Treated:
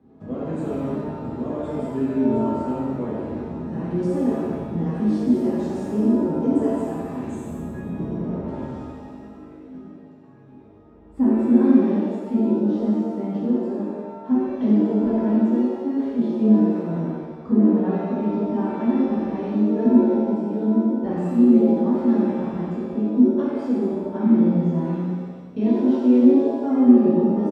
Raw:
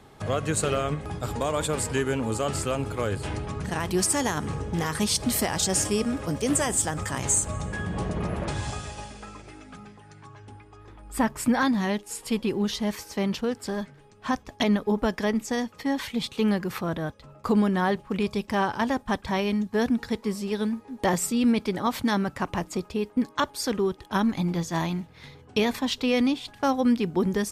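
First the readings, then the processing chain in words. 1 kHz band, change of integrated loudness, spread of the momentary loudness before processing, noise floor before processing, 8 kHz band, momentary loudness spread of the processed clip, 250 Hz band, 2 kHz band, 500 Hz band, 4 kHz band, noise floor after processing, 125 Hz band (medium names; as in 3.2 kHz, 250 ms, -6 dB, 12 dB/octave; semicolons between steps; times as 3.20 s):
-3.5 dB, +5.5 dB, 9 LU, -52 dBFS, under -25 dB, 14 LU, +8.5 dB, under -10 dB, +4.0 dB, under -15 dB, -43 dBFS, +2.5 dB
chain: band-pass filter 250 Hz, Q 2.1; feedback delay 89 ms, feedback 57%, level -8 dB; pitch-shifted reverb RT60 1.1 s, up +7 st, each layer -8 dB, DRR -6.5 dB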